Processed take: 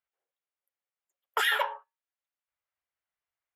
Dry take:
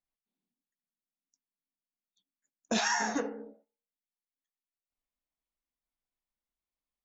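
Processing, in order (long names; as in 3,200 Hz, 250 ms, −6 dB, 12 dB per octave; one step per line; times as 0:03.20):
high-pass filter 40 Hz 6 dB per octave
flat-topped bell 700 Hz +13.5 dB 2.7 octaves
notch filter 1,300 Hz, Q 25
change of speed 1.98×
level −6.5 dB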